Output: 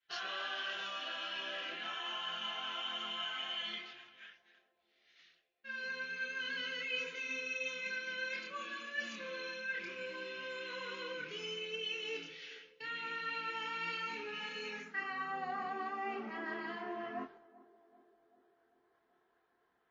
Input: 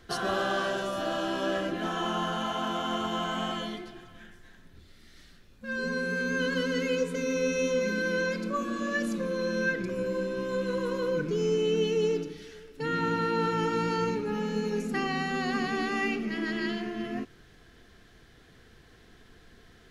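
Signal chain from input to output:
band-pass filter sweep 2,600 Hz → 950 Hz, 0:14.62–0:15.40
reversed playback
downward compressor 4 to 1, threshold −45 dBFS, peak gain reduction 10.5 dB
reversed playback
downward expander −57 dBFS
multi-voice chorus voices 6, 0.3 Hz, delay 27 ms, depth 4.4 ms
on a send: feedback echo with a band-pass in the loop 388 ms, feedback 69%, band-pass 460 Hz, level −19 dB
on the sum: level +10 dB
MP3 32 kbit/s 16,000 Hz

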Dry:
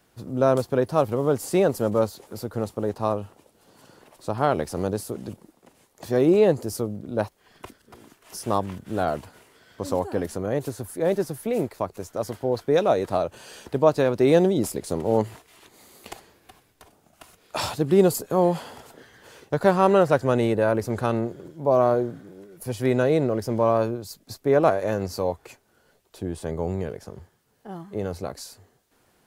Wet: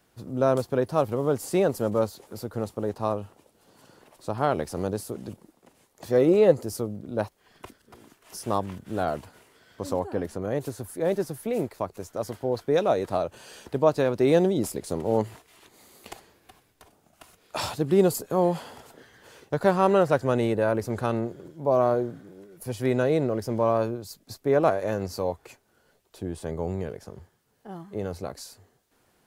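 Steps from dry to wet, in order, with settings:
0:06.09–0:06.61: hollow resonant body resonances 520/1,300/2,000 Hz, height 8 dB
0:09.93–0:10.42: high-shelf EQ 3,900 Hz −7 dB
level −2.5 dB

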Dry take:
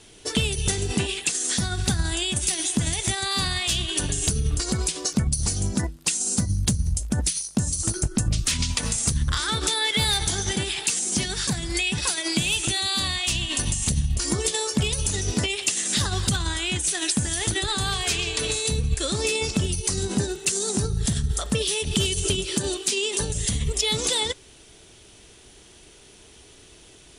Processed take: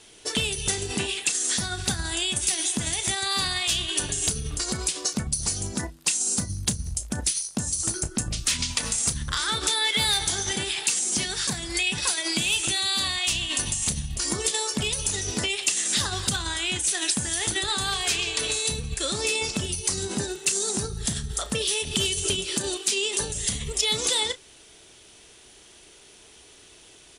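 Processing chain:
low-shelf EQ 290 Hz −9 dB
double-tracking delay 33 ms −13.5 dB

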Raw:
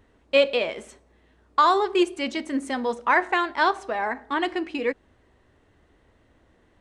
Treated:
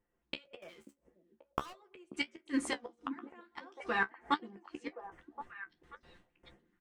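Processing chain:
noise gate with hold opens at −49 dBFS
comb filter 5.7 ms, depth 66%
0:00.62–0:01.73: leveller curve on the samples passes 5
auto-filter notch square 2.2 Hz 600–4,000 Hz
gate with flip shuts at −19 dBFS, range −38 dB
flanger 1.6 Hz, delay 9.7 ms, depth 5.4 ms, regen +37%
echo through a band-pass that steps 536 ms, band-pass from 250 Hz, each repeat 1.4 octaves, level −7 dB
amplitude modulation by smooth noise, depth 50%
level +6.5 dB

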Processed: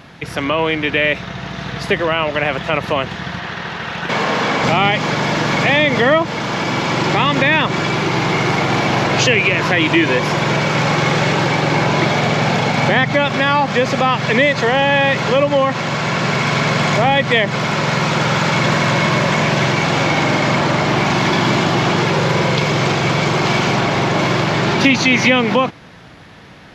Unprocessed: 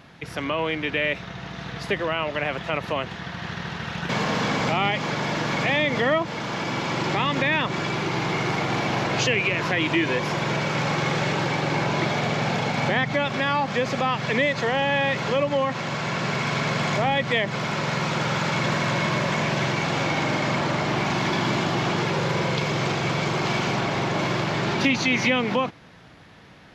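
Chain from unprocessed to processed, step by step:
0:03.39–0:04.64: bass and treble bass −8 dB, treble −5 dB
level +8.5 dB

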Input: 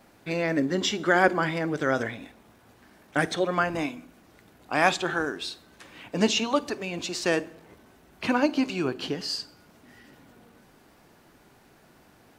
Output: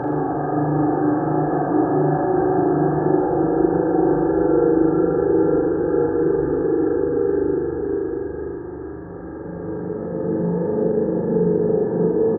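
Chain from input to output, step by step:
Butterworth low-pass 1,700 Hz 72 dB per octave
treble cut that deepens with the level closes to 430 Hz, closed at −22 dBFS
high-pass filter 110 Hz 12 dB per octave
comb filter 2.4 ms, depth 87%
extreme stretch with random phases 7.5×, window 1.00 s, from 0:04.53
downward compressor 2 to 1, threshold −35 dBFS, peak gain reduction 6.5 dB
spectral tilt −4.5 dB per octave
flutter between parallel walls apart 6.9 metres, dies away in 1 s
one half of a high-frequency compander decoder only
level +7 dB

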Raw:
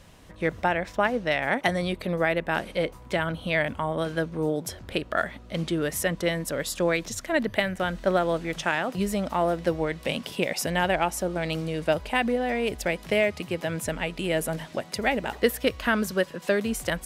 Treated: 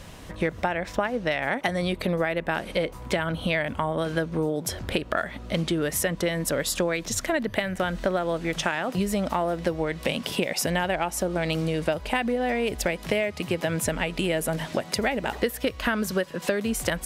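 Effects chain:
downward compressor, threshold −31 dBFS, peak gain reduction 14.5 dB
level +8.5 dB

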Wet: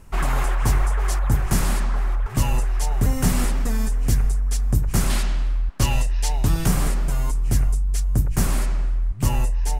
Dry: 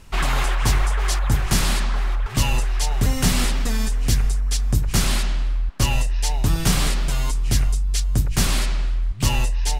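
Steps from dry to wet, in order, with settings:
parametric band 3,700 Hz −11 dB 1.6 octaves, from 0:05.10 −4 dB, from 0:06.66 −13.5 dB

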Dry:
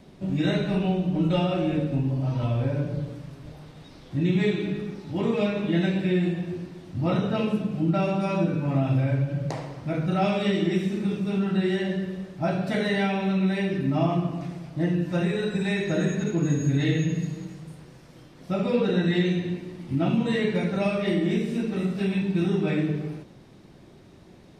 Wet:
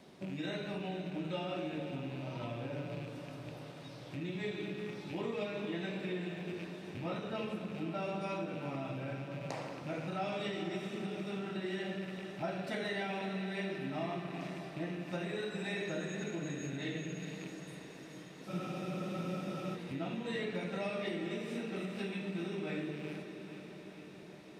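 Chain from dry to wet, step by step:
loose part that buzzes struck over −33 dBFS, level −35 dBFS
downward compressor 4 to 1, threshold −30 dBFS, peak gain reduction 10.5 dB
high-pass filter 380 Hz 6 dB per octave
on a send: feedback delay with all-pass diffusion 472 ms, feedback 70%, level −10 dB
on the sum: frozen spectrum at 0:18.50, 1.24 s
level −2.5 dB

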